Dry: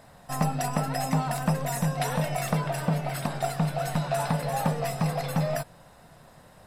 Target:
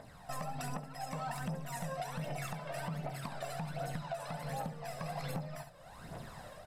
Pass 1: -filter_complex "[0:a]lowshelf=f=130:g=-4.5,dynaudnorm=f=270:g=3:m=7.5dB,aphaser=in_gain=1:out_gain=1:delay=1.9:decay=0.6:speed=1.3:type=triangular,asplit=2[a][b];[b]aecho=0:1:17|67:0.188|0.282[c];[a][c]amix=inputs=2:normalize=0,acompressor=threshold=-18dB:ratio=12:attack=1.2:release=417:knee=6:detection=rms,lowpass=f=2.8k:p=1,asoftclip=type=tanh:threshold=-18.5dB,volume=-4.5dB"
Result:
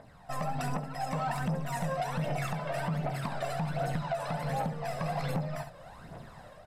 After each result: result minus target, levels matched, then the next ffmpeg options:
compressor: peak gain reduction -8.5 dB; 8000 Hz band -6.0 dB
-filter_complex "[0:a]lowshelf=f=130:g=-4.5,dynaudnorm=f=270:g=3:m=7.5dB,aphaser=in_gain=1:out_gain=1:delay=1.9:decay=0.6:speed=1.3:type=triangular,asplit=2[a][b];[b]aecho=0:1:17|67:0.188|0.282[c];[a][c]amix=inputs=2:normalize=0,acompressor=threshold=-27.5dB:ratio=12:attack=1.2:release=417:knee=6:detection=rms,lowpass=f=2.8k:p=1,asoftclip=type=tanh:threshold=-18.5dB,volume=-4.5dB"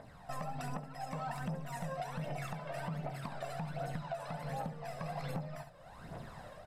8000 Hz band -6.0 dB
-filter_complex "[0:a]lowshelf=f=130:g=-4.5,dynaudnorm=f=270:g=3:m=7.5dB,aphaser=in_gain=1:out_gain=1:delay=1.9:decay=0.6:speed=1.3:type=triangular,asplit=2[a][b];[b]aecho=0:1:17|67:0.188|0.282[c];[a][c]amix=inputs=2:normalize=0,acompressor=threshold=-27.5dB:ratio=12:attack=1.2:release=417:knee=6:detection=rms,lowpass=f=7.8k:p=1,asoftclip=type=tanh:threshold=-18.5dB,volume=-4.5dB"

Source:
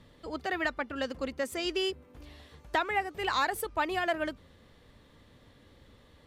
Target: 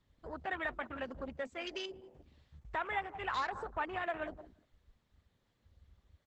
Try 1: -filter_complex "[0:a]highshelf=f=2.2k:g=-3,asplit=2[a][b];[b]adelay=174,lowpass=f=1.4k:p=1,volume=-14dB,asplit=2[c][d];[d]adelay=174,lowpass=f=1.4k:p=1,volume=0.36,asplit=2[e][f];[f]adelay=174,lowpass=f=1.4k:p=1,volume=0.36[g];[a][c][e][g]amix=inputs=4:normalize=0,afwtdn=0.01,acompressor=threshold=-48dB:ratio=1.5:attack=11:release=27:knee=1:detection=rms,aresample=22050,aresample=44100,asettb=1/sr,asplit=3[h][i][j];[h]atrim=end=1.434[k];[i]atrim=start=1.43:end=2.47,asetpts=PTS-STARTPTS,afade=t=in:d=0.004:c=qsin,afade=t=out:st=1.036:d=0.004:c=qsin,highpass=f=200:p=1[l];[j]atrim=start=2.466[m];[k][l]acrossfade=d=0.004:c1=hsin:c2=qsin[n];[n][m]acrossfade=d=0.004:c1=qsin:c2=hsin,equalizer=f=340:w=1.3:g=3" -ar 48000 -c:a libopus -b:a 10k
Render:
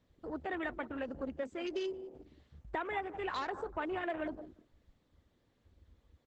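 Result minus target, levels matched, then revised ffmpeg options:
250 Hz band +7.0 dB; compressor: peak gain reduction +2.5 dB
-filter_complex "[0:a]highshelf=f=2.2k:g=-3,asplit=2[a][b];[b]adelay=174,lowpass=f=1.4k:p=1,volume=-14dB,asplit=2[c][d];[d]adelay=174,lowpass=f=1.4k:p=1,volume=0.36,asplit=2[e][f];[f]adelay=174,lowpass=f=1.4k:p=1,volume=0.36[g];[a][c][e][g]amix=inputs=4:normalize=0,afwtdn=0.01,acompressor=threshold=-40dB:ratio=1.5:attack=11:release=27:knee=1:detection=rms,aresample=22050,aresample=44100,asettb=1/sr,asplit=3[h][i][j];[h]atrim=end=1.434[k];[i]atrim=start=1.43:end=2.47,asetpts=PTS-STARTPTS,afade=t=in:d=0.004:c=qsin,afade=t=out:st=1.036:d=0.004:c=qsin,highpass=f=200:p=1[l];[j]atrim=start=2.466[m];[k][l]acrossfade=d=0.004:c1=hsin:c2=qsin[n];[n][m]acrossfade=d=0.004:c1=qsin:c2=hsin,equalizer=f=340:w=1.3:g=-8" -ar 48000 -c:a libopus -b:a 10k

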